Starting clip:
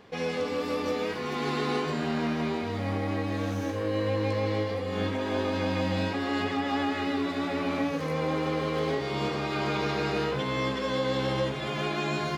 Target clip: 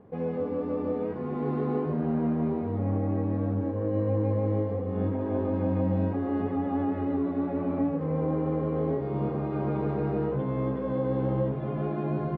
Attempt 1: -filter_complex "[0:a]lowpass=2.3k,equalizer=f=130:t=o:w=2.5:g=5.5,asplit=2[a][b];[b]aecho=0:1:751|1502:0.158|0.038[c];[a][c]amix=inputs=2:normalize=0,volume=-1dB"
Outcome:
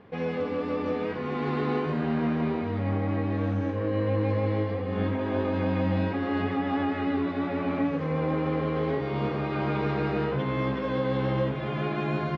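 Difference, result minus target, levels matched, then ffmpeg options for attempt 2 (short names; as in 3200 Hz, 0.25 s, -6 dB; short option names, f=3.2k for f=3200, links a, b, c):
2000 Hz band +12.0 dB; echo 0.294 s early
-filter_complex "[0:a]lowpass=790,equalizer=f=130:t=o:w=2.5:g=5.5,asplit=2[a][b];[b]aecho=0:1:1045|2090:0.158|0.038[c];[a][c]amix=inputs=2:normalize=0,volume=-1dB"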